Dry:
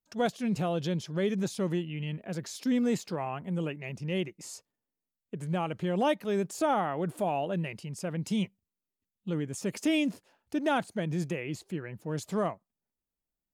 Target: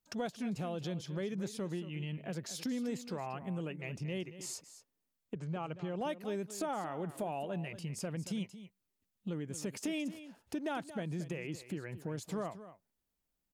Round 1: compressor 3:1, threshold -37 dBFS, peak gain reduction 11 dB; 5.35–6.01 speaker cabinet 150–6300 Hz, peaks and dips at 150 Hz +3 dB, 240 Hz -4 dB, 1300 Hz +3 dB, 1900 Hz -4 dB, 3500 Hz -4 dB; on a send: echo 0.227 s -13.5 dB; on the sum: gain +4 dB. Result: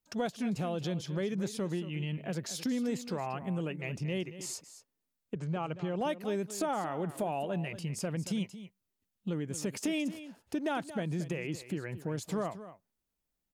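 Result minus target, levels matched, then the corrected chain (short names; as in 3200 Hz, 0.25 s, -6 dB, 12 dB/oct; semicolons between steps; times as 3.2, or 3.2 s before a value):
compressor: peak gain reduction -4.5 dB
compressor 3:1, threshold -43.5 dBFS, peak gain reduction 15.5 dB; 5.35–6.01 speaker cabinet 150–6300 Hz, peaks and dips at 150 Hz +3 dB, 240 Hz -4 dB, 1300 Hz +3 dB, 1900 Hz -4 dB, 3500 Hz -4 dB; on a send: echo 0.227 s -13.5 dB; on the sum: gain +4 dB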